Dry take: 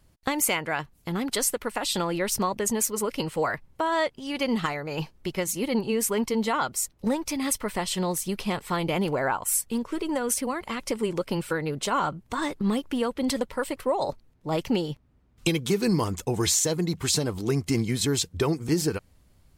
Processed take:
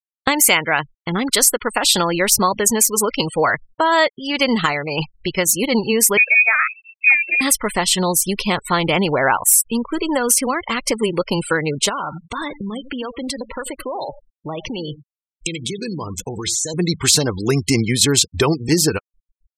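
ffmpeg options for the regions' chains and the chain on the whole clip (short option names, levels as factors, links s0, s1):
-filter_complex "[0:a]asettb=1/sr,asplit=3[s0][s1][s2];[s0]atrim=end=6.174[s3];[s1]atrim=start=6.17:end=7.41,asetpts=PTS-STARTPTS,afade=t=in:d=0.004:c=qsin,afade=t=out:st=1.236:d=0.004:c=qsin,equalizer=f=920:w=1.3:g=-5,lowpass=f=2300:t=q:w=0.5098,lowpass=f=2300:t=q:w=0.6013,lowpass=f=2300:t=q:w=0.9,lowpass=f=2300:t=q:w=2.563,afreqshift=-2700[s4];[s2]atrim=start=7.406[s5];[s3][s4]acrossfade=d=0.004:c1=hsin:c2=qsin[s6];[s6][s5]acrossfade=d=0.004:c1=qsin:c2=hsin,asettb=1/sr,asplit=3[s7][s8][s9];[s7]atrim=end=11.894[s10];[s8]atrim=start=11.89:end=16.74,asetpts=PTS-STARTPTS,afade=t=in:d=0.004:c=qsin,afade=t=out:st=4.846:d=0.004:c=qsin,acompressor=threshold=0.0251:ratio=5:attack=3.2:release=140:knee=1:detection=peak,aecho=1:1:88:0.211,atrim=end_sample=213885[s11];[s9]atrim=start=16.736[s12];[s10][s11]acrossfade=d=0.004:c1=hsin:c2=qsin[s13];[s13][s12]acrossfade=d=0.004:c1=qsin:c2=hsin,tiltshelf=f=1100:g=-3.5,afftfilt=real='re*gte(hypot(re,im),0.0158)':imag='im*gte(hypot(re,im),0.0158)':win_size=1024:overlap=0.75,alimiter=level_in=3.76:limit=0.891:release=50:level=0:latency=1,volume=0.891"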